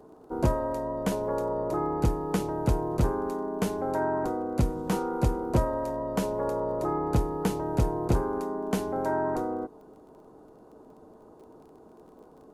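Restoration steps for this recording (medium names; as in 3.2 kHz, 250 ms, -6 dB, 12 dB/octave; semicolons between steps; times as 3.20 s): de-click; band-stop 440 Hz, Q 30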